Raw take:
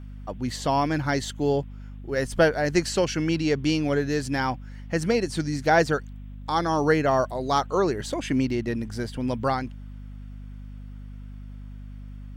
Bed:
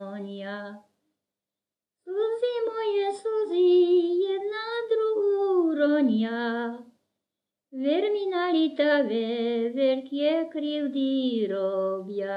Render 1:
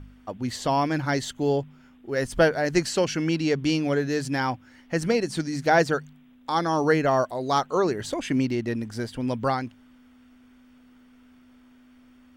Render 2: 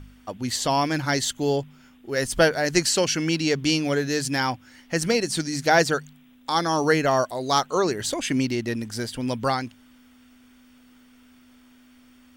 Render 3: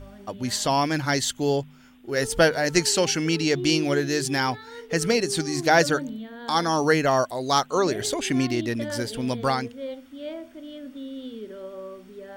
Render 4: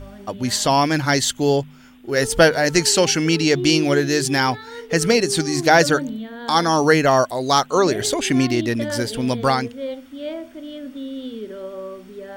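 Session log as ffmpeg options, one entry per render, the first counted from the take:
-af "bandreject=f=50:t=h:w=4,bandreject=f=100:t=h:w=4,bandreject=f=150:t=h:w=4,bandreject=f=200:t=h:w=4"
-af "highshelf=f=2.9k:g=11"
-filter_complex "[1:a]volume=-11dB[a];[0:a][a]amix=inputs=2:normalize=0"
-af "volume=5.5dB,alimiter=limit=-2dB:level=0:latency=1"

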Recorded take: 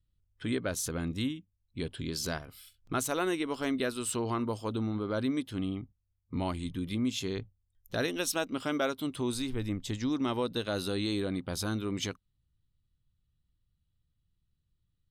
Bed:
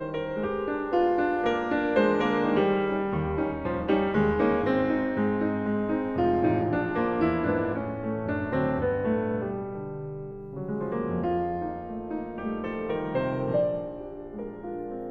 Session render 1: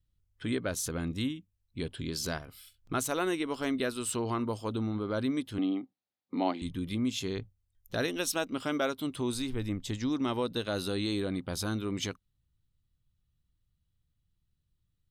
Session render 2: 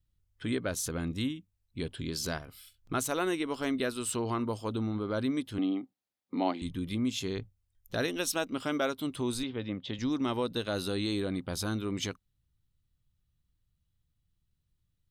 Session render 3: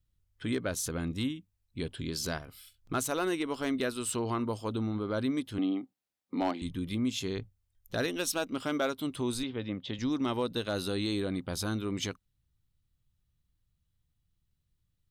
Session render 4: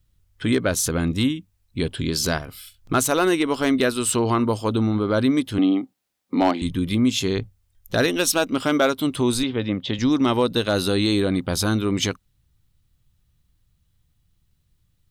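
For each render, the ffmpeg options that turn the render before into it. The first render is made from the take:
-filter_complex "[0:a]asettb=1/sr,asplit=3[a][b][c];[a]atrim=end=5.584[d];[b]atrim=start=5.58:end=6.62,asetpts=PTS-STARTPTS,afade=t=in:d=0.004:c=qsin,afade=t=out:st=1.036:d=0.004:c=qsin,highpass=f=220:w=0.5412,highpass=f=220:w=1.3066,equalizer=f=290:t=q:w=4:g=7,equalizer=f=510:t=q:w=4:g=4,equalizer=f=750:t=q:w=4:g=9,equalizer=f=2k:t=q:w=4:g=3,equalizer=f=4k:t=q:w=4:g=5,lowpass=f=4.9k:w=0.5412,lowpass=f=4.9k:w=1.3066[e];[c]atrim=start=6.616[f];[d][e]acrossfade=d=0.004:c1=hsin:c2=qsin[g];[g][f]acrossfade=d=0.004:c1=qsin:c2=hsin"
-filter_complex "[0:a]asettb=1/sr,asplit=3[a][b][c];[a]atrim=end=9.434[d];[b]atrim=start=9.43:end=9.99,asetpts=PTS-STARTPTS,afade=t=in:d=0.004:c=qsin,afade=t=out:st=0.556:d=0.004:c=qsin,highpass=140,equalizer=f=330:t=q:w=4:g=-3,equalizer=f=540:t=q:w=4:g=6,equalizer=f=3.3k:t=q:w=4:g=5,lowpass=f=4k:w=0.5412,lowpass=f=4k:w=1.3066[e];[c]atrim=start=9.986[f];[d][e]acrossfade=d=0.004:c1=hsin:c2=qsin[g];[g][f]acrossfade=d=0.004:c1=qsin:c2=hsin"
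-af "asoftclip=type=hard:threshold=-21.5dB"
-af "volume=11.5dB"

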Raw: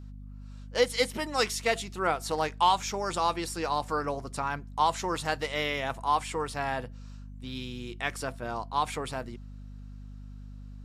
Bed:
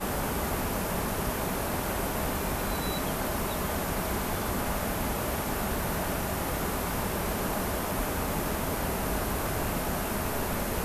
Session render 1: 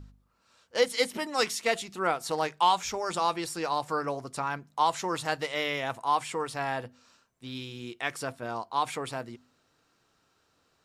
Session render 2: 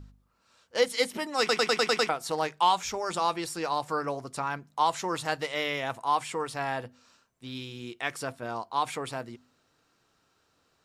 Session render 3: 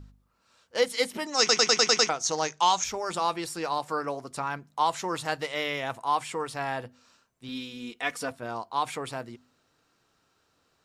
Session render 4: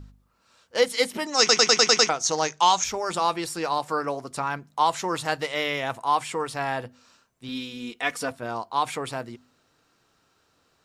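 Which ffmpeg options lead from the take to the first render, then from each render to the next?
-af "bandreject=f=50:t=h:w=4,bandreject=f=100:t=h:w=4,bandreject=f=150:t=h:w=4,bandreject=f=200:t=h:w=4,bandreject=f=250:t=h:w=4"
-filter_complex "[0:a]asplit=8[a][b][c][d][e][f][g][h];[a]atrim=end=1.492[i];[b]atrim=start=1.388:end=1.492[j];[c]atrim=start=1.388:end=1.492[k];[d]atrim=start=1.388:end=1.492[l];[e]atrim=start=1.388:end=1.492[m];[f]atrim=start=1.388:end=1.492[n];[g]atrim=start=1.388:end=1.492[o];[h]atrim=start=2.088[p];[i][j]acrossfade=d=0.004:c1=hsin:c2=hsin[q];[q][k]acrossfade=d=0.004:c1=hsin:c2=hsin[r];[r][l]acrossfade=d=0.004:c1=hsin:c2=hsin[s];[s][m]acrossfade=d=0.004:c1=hsin:c2=hsin[t];[t][n]acrossfade=d=0.004:c1=hsin:c2=hsin[u];[u][o]acrossfade=d=0.004:c1=hsin:c2=hsin[v];[v][p]acrossfade=d=0.004:c1=hsin:c2=hsin"
-filter_complex "[0:a]asettb=1/sr,asplit=3[a][b][c];[a]atrim=end=1.254[d];[b]atrim=start=1.25:end=2.84,asetpts=PTS-STARTPTS,afade=t=in:d=0.004:c=qsin,afade=t=out:st=1.586:d=0.004:c=qsin,lowpass=f=6.3k:t=q:w=10[e];[c]atrim=start=2.836[f];[d][e]acrossfade=d=0.004:c1=hsin:c2=qsin[g];[g][f]acrossfade=d=0.004:c1=qsin:c2=hsin,asettb=1/sr,asplit=3[h][i][j];[h]atrim=end=3.784[k];[i]atrim=start=3.78:end=4.31,asetpts=PTS-STARTPTS,afade=t=in:d=0.004:c=qsin,afade=t=out:st=0.526:d=0.004:c=qsin,highpass=150[l];[j]atrim=start=4.306[m];[k][l]acrossfade=d=0.004:c1=hsin:c2=qsin[n];[n][m]acrossfade=d=0.004:c1=qsin:c2=hsin,asettb=1/sr,asplit=3[o][p][q];[o]atrim=end=7.484[r];[p]atrim=start=7.48:end=8.31,asetpts=PTS-STARTPTS,afade=t=in:d=0.004:c=qsin,afade=t=out:st=0.826:d=0.004:c=qsin,aecho=1:1:4.1:0.67,atrim=end_sample=36603[s];[q]atrim=start=8.306[t];[r][s]acrossfade=d=0.004:c1=hsin:c2=qsin[u];[u][t]acrossfade=d=0.004:c1=qsin:c2=hsin"
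-af "volume=3.5dB"

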